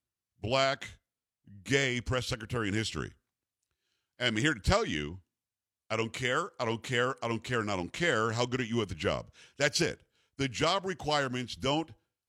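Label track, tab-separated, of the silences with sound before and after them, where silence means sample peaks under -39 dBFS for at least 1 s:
3.080000	4.200000	silence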